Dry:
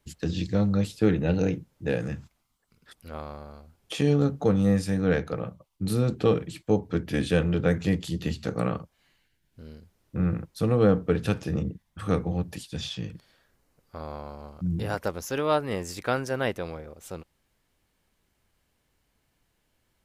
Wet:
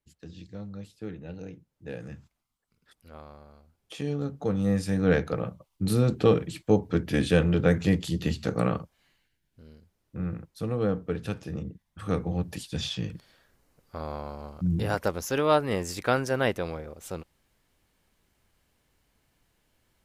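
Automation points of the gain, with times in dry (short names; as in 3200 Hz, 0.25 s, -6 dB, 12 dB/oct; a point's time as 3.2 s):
1.49 s -16 dB
2.15 s -8.5 dB
4.2 s -8.5 dB
5.11 s +1.5 dB
8.77 s +1.5 dB
9.65 s -6.5 dB
11.67 s -6.5 dB
12.7 s +2 dB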